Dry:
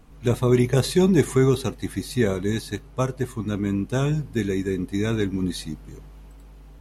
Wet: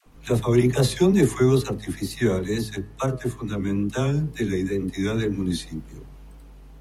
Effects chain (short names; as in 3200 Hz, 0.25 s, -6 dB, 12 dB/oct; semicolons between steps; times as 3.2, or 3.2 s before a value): de-hum 107.2 Hz, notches 18; dispersion lows, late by 60 ms, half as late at 570 Hz; wow and flutter 61 cents